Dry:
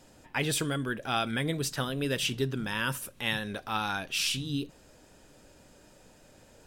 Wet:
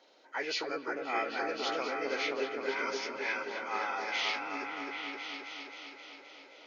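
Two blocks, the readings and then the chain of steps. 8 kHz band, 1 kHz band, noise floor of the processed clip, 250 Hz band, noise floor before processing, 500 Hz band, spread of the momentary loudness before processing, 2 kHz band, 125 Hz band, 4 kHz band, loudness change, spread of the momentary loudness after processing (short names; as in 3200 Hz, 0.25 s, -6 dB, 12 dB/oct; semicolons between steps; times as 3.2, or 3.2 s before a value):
-13.0 dB, +0.5 dB, -57 dBFS, -9.0 dB, -58 dBFS, +0.5 dB, 5 LU, -0.5 dB, under -30 dB, -5.5 dB, -4.0 dB, 12 LU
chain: nonlinear frequency compression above 1200 Hz 1.5:1; HPF 370 Hz 24 dB/oct; repeats that get brighter 0.263 s, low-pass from 750 Hz, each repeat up 1 oct, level 0 dB; gain -3 dB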